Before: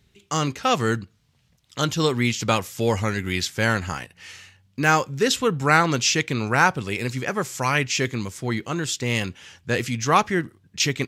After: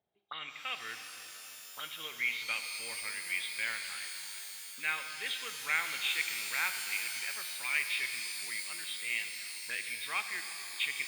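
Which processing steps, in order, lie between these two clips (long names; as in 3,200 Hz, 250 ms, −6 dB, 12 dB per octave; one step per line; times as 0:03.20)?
hearing-aid frequency compression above 3,100 Hz 4 to 1
envelope filter 670–2,300 Hz, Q 5.6, up, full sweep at −25 dBFS
reverb with rising layers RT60 3.9 s, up +12 semitones, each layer −2 dB, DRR 6 dB
level −3 dB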